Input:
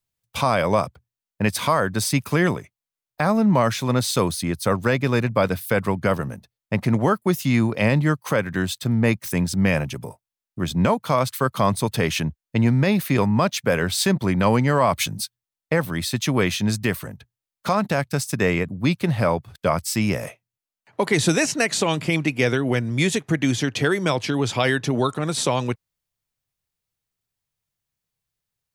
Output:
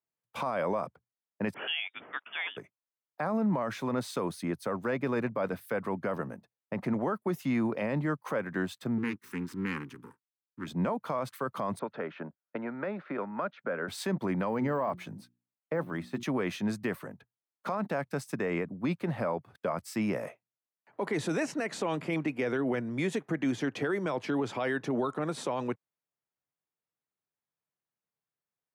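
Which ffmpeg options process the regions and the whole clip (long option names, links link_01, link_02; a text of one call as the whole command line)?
ffmpeg -i in.wav -filter_complex "[0:a]asettb=1/sr,asplit=3[link_01][link_02][link_03];[link_01]atrim=end=1.544[link_04];[link_02]atrim=start=1.54:end=2.57,asetpts=PTS-STARTPTS,afade=type=in:duration=0.004:curve=qsin,afade=type=out:start_time=1.026:duration=0.004:curve=qsin,highpass=frequency=510:width=0.5412,highpass=frequency=510:width=1.3066,lowpass=frequency=3300:width_type=q:width=0.5098,lowpass=frequency=3300:width_type=q:width=0.6013,lowpass=frequency=3300:width_type=q:width=0.9,lowpass=frequency=3300:width_type=q:width=2.563,afreqshift=-3900[link_05];[link_03]atrim=start=2.566[link_06];[link_04][link_05]acrossfade=duration=0.004:curve1=hsin:curve2=qsin[link_07];[link_07][link_06]acrossfade=duration=0.004:curve1=qsin:curve2=hsin,asettb=1/sr,asplit=3[link_08][link_09][link_10];[link_08]atrim=end=8.984[link_11];[link_09]atrim=start=8.98:end=10.67,asetpts=PTS-STARTPTS,afade=type=in:duration=0.004:curve=qsin,afade=type=out:start_time=1.686:duration=0.004:curve=qsin,aeval=exprs='max(val(0),0)':channel_layout=same,asuperstop=centerf=640:order=4:qfactor=0.99[link_12];[link_10]atrim=start=10.666[link_13];[link_11][link_12]acrossfade=duration=0.004:curve1=hsin:curve2=qsin[link_14];[link_14][link_13]acrossfade=duration=0.004:curve1=qsin:curve2=hsin,asettb=1/sr,asplit=3[link_15][link_16][link_17];[link_15]atrim=end=11.794[link_18];[link_16]atrim=start=11.79:end=13.88,asetpts=PTS-STARTPTS,afade=type=in:duration=0.004:curve=qsin,afade=type=out:start_time=2.086:duration=0.004:curve=qsin,acrossover=split=350|1300[link_19][link_20][link_21];[link_19]acompressor=threshold=-30dB:ratio=4[link_22];[link_20]acompressor=threshold=-34dB:ratio=4[link_23];[link_21]acompressor=threshold=-37dB:ratio=4[link_24];[link_22][link_23][link_24]amix=inputs=3:normalize=0,highpass=190,equalizer=frequency=580:width_type=q:width=4:gain=5,equalizer=frequency=1400:width_type=q:width=4:gain=10,equalizer=frequency=2900:width_type=q:width=4:gain=-3,lowpass=frequency=3500:width=0.5412,lowpass=frequency=3500:width=1.3066[link_25];[link_17]atrim=start=13.876[link_26];[link_18][link_25]acrossfade=duration=0.004:curve1=hsin:curve2=qsin[link_27];[link_27][link_26]acrossfade=duration=0.004:curve1=qsin:curve2=hsin,asettb=1/sr,asplit=3[link_28][link_29][link_30];[link_28]atrim=end=14.494[link_31];[link_29]atrim=start=14.49:end=16.23,asetpts=PTS-STARTPTS,afade=type=in:duration=0.004:curve=qsin,afade=type=out:start_time=1.736:duration=0.004:curve=qsin,bandreject=frequency=60:width_type=h:width=6,bandreject=frequency=120:width_type=h:width=6,bandreject=frequency=180:width_type=h:width=6,bandreject=frequency=240:width_type=h:width=6,bandreject=frequency=300:width_type=h:width=6,bandreject=frequency=360:width_type=h:width=6,deesser=0.95[link_32];[link_30]atrim=start=16.226[link_33];[link_31][link_32]acrossfade=duration=0.004:curve1=hsin:curve2=qsin[link_34];[link_34][link_33]acrossfade=duration=0.004:curve1=qsin:curve2=hsin,highpass=93,acrossover=split=180 2000:gain=0.178 1 0.2[link_35][link_36][link_37];[link_35][link_36][link_37]amix=inputs=3:normalize=0,alimiter=limit=-17.5dB:level=0:latency=1:release=31,volume=-4.5dB" out.wav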